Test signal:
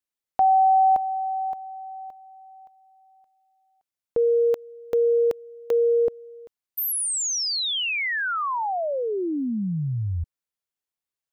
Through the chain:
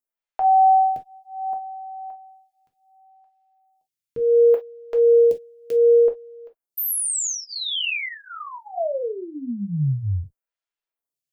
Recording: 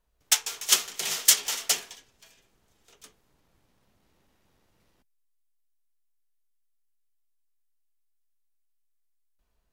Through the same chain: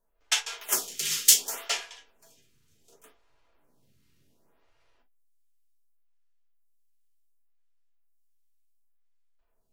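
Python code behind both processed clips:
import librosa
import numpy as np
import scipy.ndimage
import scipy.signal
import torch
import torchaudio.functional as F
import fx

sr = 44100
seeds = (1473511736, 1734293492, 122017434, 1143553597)

y = fx.rev_gated(x, sr, seeds[0], gate_ms=80, shape='falling', drr_db=1.5)
y = fx.stagger_phaser(y, sr, hz=0.68)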